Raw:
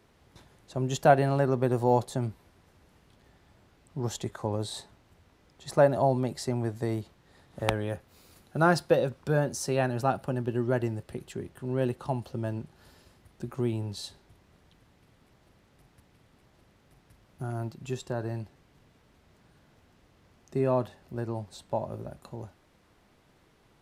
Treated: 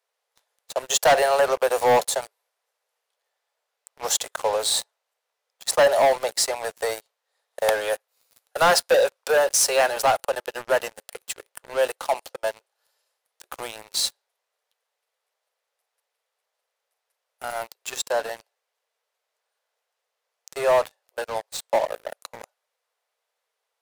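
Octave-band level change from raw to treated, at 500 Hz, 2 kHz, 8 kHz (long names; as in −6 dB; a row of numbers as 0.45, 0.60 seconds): +6.5, +10.0, +17.0 decibels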